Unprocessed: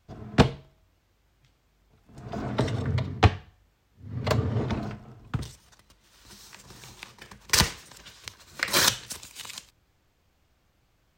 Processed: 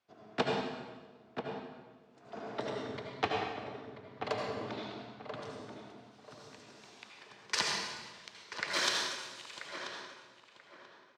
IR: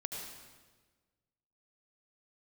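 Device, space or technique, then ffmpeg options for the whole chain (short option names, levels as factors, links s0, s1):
supermarket ceiling speaker: -filter_complex "[0:a]highpass=340,lowpass=5500[s0];[1:a]atrim=start_sample=2205[s1];[s0][s1]afir=irnorm=-1:irlink=0,asettb=1/sr,asplit=3[s2][s3][s4];[s2]atrim=end=4.724[s5];[s3]atrim=start=4.72:end=5.36,asetpts=PTS-STARTPTS,afade=t=in:d=0.004:c=qsin,afade=t=out:st=0.636:d=0.004:c=qsin,equalizer=f=3800:w=2.2:g=9.5[s6];[s4]atrim=start=5.356[s7];[s5][s6]acrossfade=d=0.004:c1=hsin:c2=qsin[s8];[s8][s7]acrossfade=d=0.004:c1=qsin:c2=hsin,asplit=2[s9][s10];[s10]adelay=985,lowpass=f=1800:p=1,volume=0.447,asplit=2[s11][s12];[s12]adelay=985,lowpass=f=1800:p=1,volume=0.3,asplit=2[s13][s14];[s14]adelay=985,lowpass=f=1800:p=1,volume=0.3,asplit=2[s15][s16];[s16]adelay=985,lowpass=f=1800:p=1,volume=0.3[s17];[s9][s11][s13][s15][s17]amix=inputs=5:normalize=0,volume=0.473"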